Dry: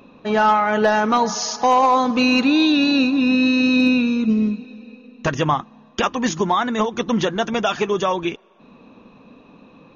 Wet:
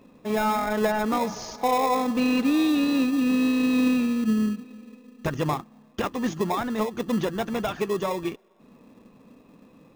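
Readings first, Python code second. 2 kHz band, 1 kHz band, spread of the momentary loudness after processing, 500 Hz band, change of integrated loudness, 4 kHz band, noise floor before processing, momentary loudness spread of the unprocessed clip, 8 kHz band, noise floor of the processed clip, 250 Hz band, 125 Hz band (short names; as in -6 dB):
-10.0 dB, -9.0 dB, 10 LU, -6.0 dB, -6.5 dB, -11.0 dB, -49 dBFS, 8 LU, n/a, -55 dBFS, -5.0 dB, -4.5 dB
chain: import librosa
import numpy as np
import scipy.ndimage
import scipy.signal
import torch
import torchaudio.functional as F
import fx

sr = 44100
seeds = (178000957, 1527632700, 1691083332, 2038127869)

p1 = fx.high_shelf(x, sr, hz=2800.0, db=-8.0)
p2 = fx.sample_hold(p1, sr, seeds[0], rate_hz=1500.0, jitter_pct=0)
p3 = p1 + (p2 * librosa.db_to_amplitude(-6.0))
y = p3 * librosa.db_to_amplitude(-8.0)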